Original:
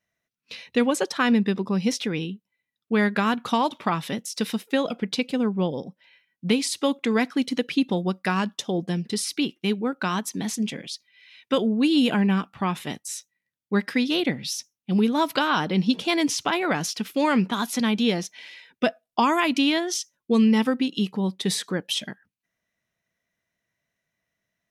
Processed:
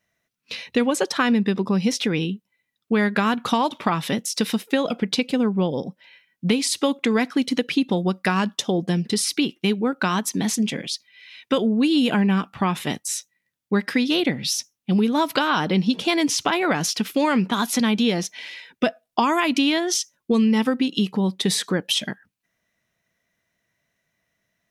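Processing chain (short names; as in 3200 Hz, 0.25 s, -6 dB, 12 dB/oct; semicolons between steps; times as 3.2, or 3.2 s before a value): compressor 2.5:1, threshold -25 dBFS, peak gain reduction 7 dB; gain +6.5 dB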